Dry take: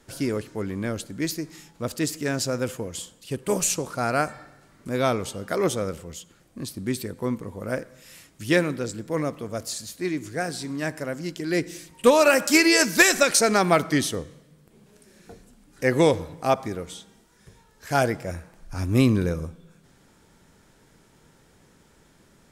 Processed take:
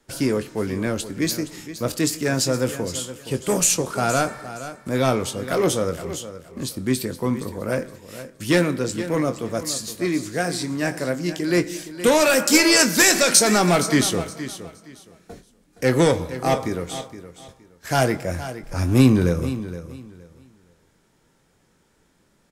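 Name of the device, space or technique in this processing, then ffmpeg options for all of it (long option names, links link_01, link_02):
one-band saturation: -filter_complex "[0:a]acrossover=split=240|4100[link_01][link_02][link_03];[link_02]asoftclip=type=tanh:threshold=-20dB[link_04];[link_01][link_04][link_03]amix=inputs=3:normalize=0,agate=range=-11dB:threshold=-47dB:ratio=16:detection=peak,equalizer=frequency=63:width_type=o:width=2.3:gain=-2.5,asplit=2[link_05][link_06];[link_06]adelay=23,volume=-10.5dB[link_07];[link_05][link_07]amix=inputs=2:normalize=0,aecho=1:1:468|936|1404:0.224|0.0515|0.0118,volume=5.5dB"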